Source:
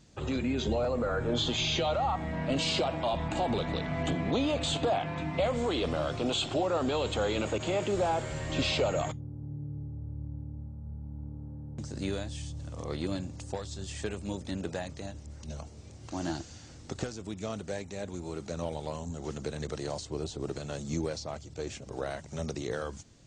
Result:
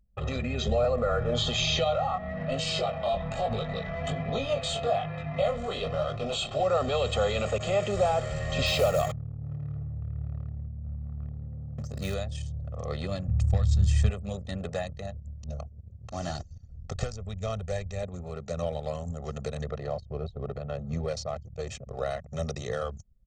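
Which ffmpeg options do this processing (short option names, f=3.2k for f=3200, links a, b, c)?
-filter_complex "[0:a]asettb=1/sr,asplit=3[a][b][c];[a]atrim=end=1.844[d];[b]atrim=start=1.84:end=6.6,asetpts=PTS-STARTPTS,afade=t=in:d=0.004:c=qsin,afade=t=out:st=4.756:d=0.004:c=qsin,flanger=delay=18:depth=4.2:speed=1.2[e];[c]atrim=start=6.596[f];[d][e]acrossfade=d=0.004:c1=hsin:c2=qsin[g];[g][f]acrossfade=d=0.004:c1=qsin:c2=hsin,asettb=1/sr,asplit=3[h][i][j];[h]atrim=end=8.664[k];[i]atrim=start=8.66:end=12.14,asetpts=PTS-STARTPTS,afade=t=in:d=0.004:c=qsin,afade=t=out:st=3.476:d=0.004:c=qsin,acrusher=bits=4:mode=log:mix=0:aa=0.000001[l];[j]atrim=start=12.136[m];[k][l]acrossfade=d=0.004:c1=hsin:c2=qsin[n];[n][m]acrossfade=d=0.004:c1=qsin:c2=hsin,asplit=3[o][p][q];[o]afade=t=out:st=13.27:d=0.02[r];[p]asubboost=boost=7.5:cutoff=150,afade=t=in:st=13.27:d=0.02,afade=t=out:st=14.09:d=0.02[s];[q]afade=t=in:st=14.09:d=0.02[t];[r][s][t]amix=inputs=3:normalize=0,asettb=1/sr,asplit=3[u][v][w];[u]atrim=end=16.174[x];[v]atrim=start=16.17:end=18.03,asetpts=PTS-STARTPTS,afade=t=in:d=0.004:c=qsin,afade=t=out:st=1.856:d=0.004:c=qsin,asubboost=boost=9.5:cutoff=90[y];[w]atrim=start=18.026[z];[x][y]acrossfade=d=0.004:c1=hsin:c2=qsin[aa];[aa][z]acrossfade=d=0.004:c1=qsin:c2=hsin,asettb=1/sr,asplit=3[ab][ac][ad];[ab]atrim=end=19.634[ae];[ac]atrim=start=19.63:end=21.08,asetpts=PTS-STARTPTS,afade=t=in:d=0.004:c=qsin,afade=t=out:st=1.446:d=0.004:c=qsin,lowpass=f=1.9k:p=1[af];[ad]atrim=start=21.076[ag];[ae][af]acrossfade=d=0.004:c1=hsin:c2=qsin[ah];[ah][ag]acrossfade=d=0.004:c1=qsin:c2=hsin,anlmdn=0.158,aecho=1:1:1.6:0.99"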